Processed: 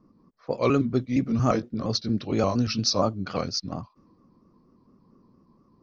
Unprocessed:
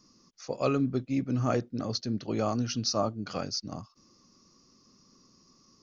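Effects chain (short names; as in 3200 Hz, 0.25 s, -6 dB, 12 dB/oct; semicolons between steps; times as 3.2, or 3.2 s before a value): trilling pitch shifter -1.5 st, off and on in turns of 0.116 s; low-pass opened by the level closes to 890 Hz, open at -26 dBFS; gain +6 dB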